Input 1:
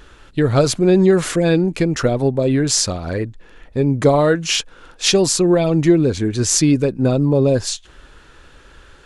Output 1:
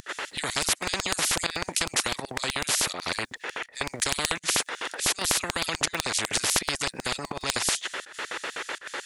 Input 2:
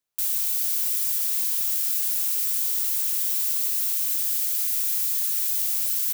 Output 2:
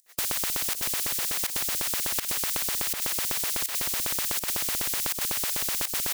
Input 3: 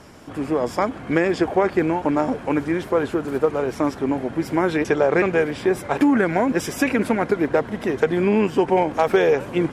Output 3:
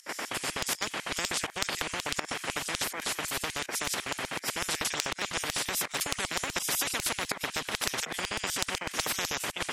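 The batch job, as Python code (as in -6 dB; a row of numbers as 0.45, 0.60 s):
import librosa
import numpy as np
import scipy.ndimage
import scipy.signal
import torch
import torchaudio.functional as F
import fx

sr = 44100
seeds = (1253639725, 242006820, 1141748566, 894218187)

y = fx.peak_eq(x, sr, hz=1900.0, db=13.0, octaves=0.36)
y = fx.volume_shaper(y, sr, bpm=82, per_beat=1, depth_db=-19, release_ms=88.0, shape='slow start')
y = fx.filter_lfo_highpass(y, sr, shape='square', hz=8.0, low_hz=500.0, high_hz=6300.0, q=0.93)
y = fx.spectral_comp(y, sr, ratio=10.0)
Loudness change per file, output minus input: -10.5, -4.5, -10.0 LU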